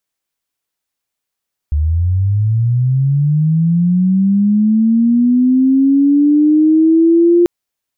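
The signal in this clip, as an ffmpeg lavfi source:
-f lavfi -i "aevalsrc='pow(10,(-11+5*t/5.74)/20)*sin(2*PI*(72*t+278*t*t/(2*5.74)))':d=5.74:s=44100"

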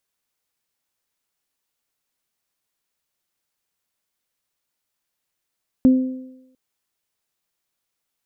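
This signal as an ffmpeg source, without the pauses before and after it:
-f lavfi -i "aevalsrc='0.422*pow(10,-3*t/0.84)*sin(2*PI*258*t)+0.0596*pow(10,-3*t/1.03)*sin(2*PI*516*t)':d=0.7:s=44100"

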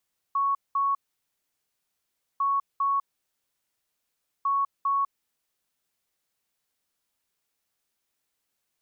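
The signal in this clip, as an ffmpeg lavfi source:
-f lavfi -i "aevalsrc='0.0841*sin(2*PI*1110*t)*clip(min(mod(mod(t,2.05),0.4),0.2-mod(mod(t,2.05),0.4))/0.005,0,1)*lt(mod(t,2.05),0.8)':d=6.15:s=44100"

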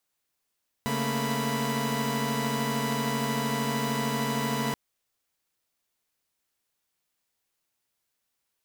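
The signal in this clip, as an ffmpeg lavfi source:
-f lavfi -i "aevalsrc='0.0335*((2*mod(138.59*t,1)-1)+(2*mod(220*t,1)-1)+(2*mod(233.08*t,1)-1)+(2*mod(987.77*t,1)-1))':d=3.88:s=44100"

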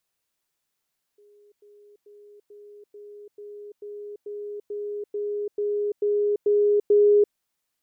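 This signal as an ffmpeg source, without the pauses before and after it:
-f lavfi -i "aevalsrc='pow(10,(-52.5+3*floor(t/0.44))/20)*sin(2*PI*413*t)*clip(min(mod(t,0.44),0.34-mod(t,0.44))/0.005,0,1)':d=6.16:s=44100"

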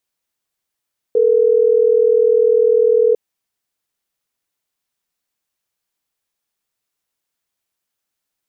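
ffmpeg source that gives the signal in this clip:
-f lavfi -i "aevalsrc='0.237*(sin(2*PI*440*t)+sin(2*PI*480*t))*clip(min(mod(t,6),2-mod(t,6))/0.005,0,1)':d=3.12:s=44100"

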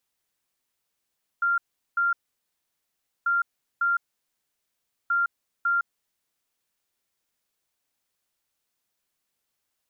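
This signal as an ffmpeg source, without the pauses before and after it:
-f lavfi -i "aevalsrc='0.1*sin(2*PI*1390*t)*clip(min(mod(mod(t,1.84),0.55),0.16-mod(mod(t,1.84),0.55))/0.005,0,1)*lt(mod(t,1.84),1.1)':d=5.52:s=44100"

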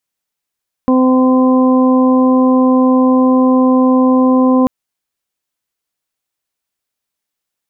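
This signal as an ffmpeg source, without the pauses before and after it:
-f lavfi -i "aevalsrc='0.398*sin(2*PI*257*t)+0.178*sin(2*PI*514*t)+0.0708*sin(2*PI*771*t)+0.119*sin(2*PI*1028*t)':d=3.79:s=44100"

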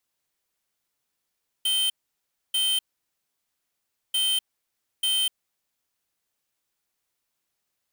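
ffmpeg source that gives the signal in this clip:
-f lavfi -i "aevalsrc='0.0668*(2*lt(mod(3110*t,1),0.5)-1)*clip(min(mod(mod(t,2.49),0.89),0.25-mod(mod(t,2.49),0.89))/0.005,0,1)*lt(mod(t,2.49),1.78)':d=4.98:s=44100"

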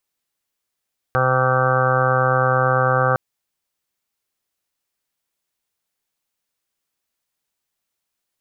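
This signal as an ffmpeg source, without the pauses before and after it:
-f lavfi -i "aevalsrc='0.0891*sin(2*PI*129*t)+0.0188*sin(2*PI*258*t)+0.0266*sin(2*PI*387*t)+0.1*sin(2*PI*516*t)+0.0316*sin(2*PI*645*t)+0.0668*sin(2*PI*774*t)+0.0266*sin(2*PI*903*t)+0.0133*sin(2*PI*1032*t)+0.0794*sin(2*PI*1161*t)+0.0596*sin(2*PI*1290*t)+0.0447*sin(2*PI*1419*t)+0.0562*sin(2*PI*1548*t)':d=2.01:s=44100"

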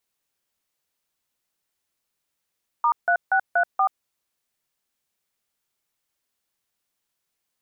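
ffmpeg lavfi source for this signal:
-f lavfi -i "aevalsrc='0.112*clip(min(mod(t,0.238),0.081-mod(t,0.238))/0.002,0,1)*(eq(floor(t/0.238),0)*(sin(2*PI*941*mod(t,0.238))+sin(2*PI*1209*mod(t,0.238)))+eq(floor(t/0.238),1)*(sin(2*PI*697*mod(t,0.238))+sin(2*PI*1477*mod(t,0.238)))+eq(floor(t/0.238),2)*(sin(2*PI*770*mod(t,0.238))+sin(2*PI*1477*mod(t,0.238)))+eq(floor(t/0.238),3)*(sin(2*PI*697*mod(t,0.238))+sin(2*PI*1477*mod(t,0.238)))+eq(floor(t/0.238),4)*(sin(2*PI*770*mod(t,0.238))+sin(2*PI*1209*mod(t,0.238))))':d=1.19:s=44100"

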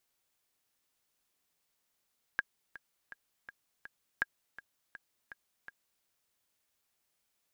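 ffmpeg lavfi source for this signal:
-f lavfi -i "aevalsrc='pow(10,(-16-17.5*gte(mod(t,5*60/164),60/164))/20)*sin(2*PI*1630*mod(t,60/164))*exp(-6.91*mod(t,60/164)/0.03)':d=3.65:s=44100"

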